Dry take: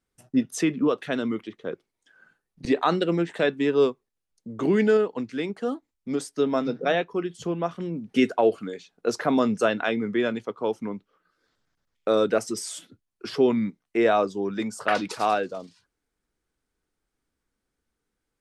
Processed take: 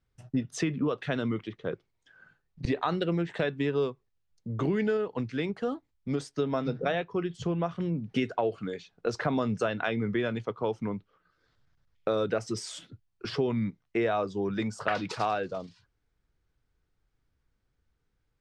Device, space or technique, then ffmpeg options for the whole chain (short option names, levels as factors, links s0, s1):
jukebox: -af "lowpass=5300,lowshelf=f=170:t=q:w=1.5:g=8.5,acompressor=threshold=0.0562:ratio=4"